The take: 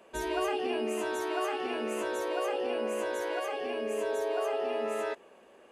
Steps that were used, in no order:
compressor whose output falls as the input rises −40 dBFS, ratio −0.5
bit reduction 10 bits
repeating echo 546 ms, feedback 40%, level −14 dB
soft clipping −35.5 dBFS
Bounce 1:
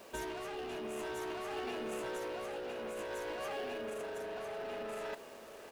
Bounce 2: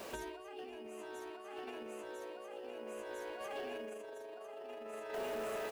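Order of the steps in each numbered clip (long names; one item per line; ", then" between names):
bit reduction, then soft clipping, then compressor whose output falls as the input rises, then repeating echo
repeating echo, then bit reduction, then compressor whose output falls as the input rises, then soft clipping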